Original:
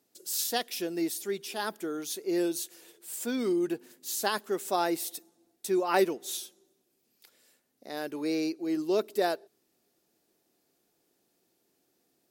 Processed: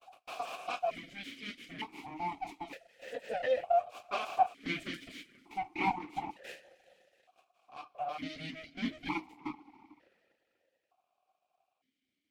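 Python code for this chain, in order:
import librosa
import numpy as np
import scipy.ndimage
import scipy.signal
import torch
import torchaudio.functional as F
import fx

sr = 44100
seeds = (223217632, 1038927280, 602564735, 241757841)

y = fx.block_reorder(x, sr, ms=137.0, group=2)
y = fx.rev_double_slope(y, sr, seeds[0], early_s=0.25, late_s=2.6, knee_db=-20, drr_db=-6.0)
y = fx.dereverb_blind(y, sr, rt60_s=0.67)
y = np.abs(y)
y = fx.vowel_held(y, sr, hz=1.1)
y = F.gain(torch.from_numpy(y), 5.5).numpy()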